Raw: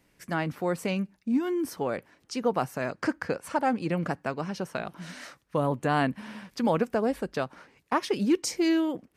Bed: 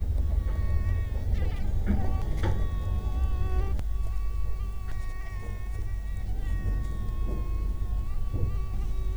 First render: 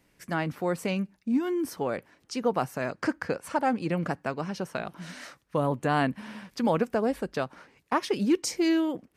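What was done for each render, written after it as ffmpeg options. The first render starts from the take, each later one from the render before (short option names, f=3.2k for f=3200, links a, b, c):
-af anull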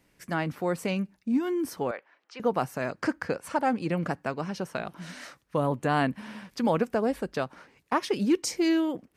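-filter_complex "[0:a]asettb=1/sr,asplit=3[a][b][c];[a]atrim=end=1.914[d];[b]atrim=start=1.91:end=2.4,asetpts=PTS-STARTPTS,afade=t=in:d=0.004:c=qsin,afade=t=out:st=0.486:d=0.004:c=qsin,highpass=690,lowpass=2.7k[e];[c]atrim=start=2.396[f];[d][e]acrossfade=d=0.004:c1=hsin:c2=qsin[g];[g][f]acrossfade=d=0.004:c1=qsin:c2=hsin"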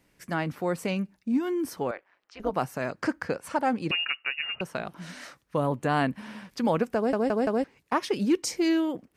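-filter_complex "[0:a]asplit=3[a][b][c];[a]afade=t=out:st=1.93:d=0.02[d];[b]tremolo=f=190:d=0.788,afade=t=in:st=1.93:d=0.02,afade=t=out:st=2.52:d=0.02[e];[c]afade=t=in:st=2.52:d=0.02[f];[d][e][f]amix=inputs=3:normalize=0,asettb=1/sr,asplit=3[g][h][i];[g]atrim=end=3.914[j];[h]atrim=start=3.91:end=4.61,asetpts=PTS-STARTPTS,afade=t=in:d=0.004:c=qsin,afade=t=out:st=0.696:d=0.004:c=qsin,lowpass=f=2.6k:t=q:w=0.5098,lowpass=f=2.6k:t=q:w=0.6013,lowpass=f=2.6k:t=q:w=0.9,lowpass=f=2.6k:t=q:w=2.563,afreqshift=-3000[k];[i]atrim=start=4.606[l];[j][k]acrossfade=d=0.004:c1=hsin:c2=qsin[m];[m][l]acrossfade=d=0.004:c1=qsin:c2=hsin,asplit=5[n][o][p][q][r];[n]atrim=end=7.132[s];[o]atrim=start=6.958:end=7.132[t];[p]atrim=start=6.958:end=7.132[u];[q]atrim=start=6.958:end=7.132[v];[r]atrim=start=7.638[w];[s][t]acrossfade=d=0.004:c1=hsin:c2=hsin[x];[x][u]acrossfade=d=0.004:c1=hsin:c2=hsin[y];[y][v]acrossfade=d=0.004:c1=hsin:c2=hsin[z];[z][w]acrossfade=d=0.004:c1=hsin:c2=hsin"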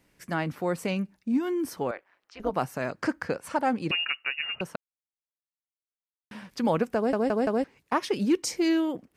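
-filter_complex "[0:a]asplit=3[a][b][c];[a]atrim=end=4.76,asetpts=PTS-STARTPTS,afade=t=out:st=4.756:d=0.004:c=hsin[d];[b]atrim=start=4.76:end=6.31,asetpts=PTS-STARTPTS,volume=0[e];[c]atrim=start=6.31,asetpts=PTS-STARTPTS,afade=t=in:d=0.004:c=hsin[f];[d][e][f]concat=n=3:v=0:a=1"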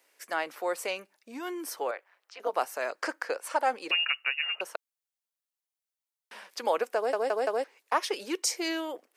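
-af "highpass=f=440:w=0.5412,highpass=f=440:w=1.3066,highshelf=f=4.7k:g=5"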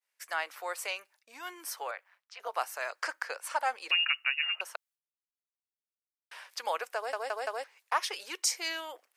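-af "agate=range=-33dB:threshold=-57dB:ratio=3:detection=peak,highpass=890"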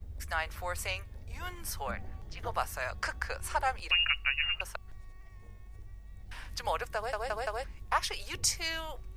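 -filter_complex "[1:a]volume=-16dB[a];[0:a][a]amix=inputs=2:normalize=0"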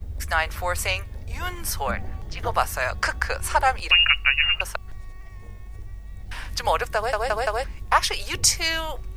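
-af "volume=10.5dB"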